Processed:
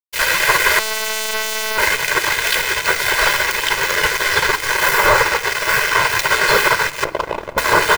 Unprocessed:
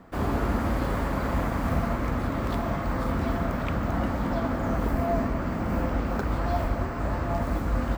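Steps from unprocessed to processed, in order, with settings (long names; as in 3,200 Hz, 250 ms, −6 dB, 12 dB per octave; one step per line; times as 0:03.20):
0:07.04–0:07.58: spectral envelope exaggerated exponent 3
high-pass filter 46 Hz 6 dB per octave
mains-hum notches 60/120/180 Hz
gate on every frequency bin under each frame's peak −20 dB weak
soft clipping −34.5 dBFS, distortion −19 dB
0:00.79–0:01.78: phases set to zero 218 Hz
dead-zone distortion −47 dBFS
repeating echo 211 ms, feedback 58%, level −23.5 dB
convolution reverb RT60 0.35 s, pre-delay 3 ms, DRR 15.5 dB
boost into a limiter +34 dB
level −1 dB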